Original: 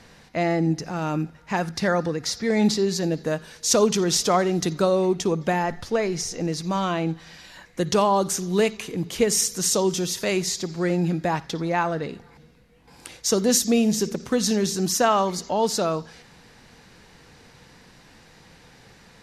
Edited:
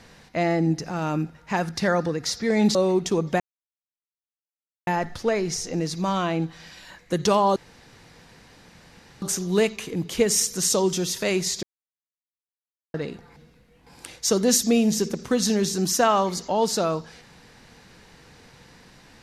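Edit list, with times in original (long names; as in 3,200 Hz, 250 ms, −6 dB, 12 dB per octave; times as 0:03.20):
0:02.75–0:04.89: remove
0:05.54: splice in silence 1.47 s
0:08.23: splice in room tone 1.66 s
0:10.64–0:11.95: silence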